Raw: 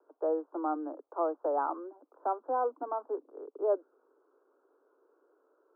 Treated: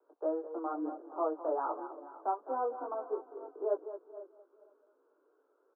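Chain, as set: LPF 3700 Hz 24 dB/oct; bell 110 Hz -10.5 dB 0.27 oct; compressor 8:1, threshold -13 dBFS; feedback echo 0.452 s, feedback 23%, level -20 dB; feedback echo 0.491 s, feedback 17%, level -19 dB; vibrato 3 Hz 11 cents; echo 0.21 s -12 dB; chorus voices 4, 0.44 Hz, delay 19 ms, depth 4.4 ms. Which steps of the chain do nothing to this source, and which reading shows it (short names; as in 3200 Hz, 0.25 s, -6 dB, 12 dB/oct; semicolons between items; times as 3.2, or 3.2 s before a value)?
LPF 3700 Hz: input band ends at 1500 Hz; bell 110 Hz: input band starts at 240 Hz; compressor, threshold -13 dBFS: input peak -18.0 dBFS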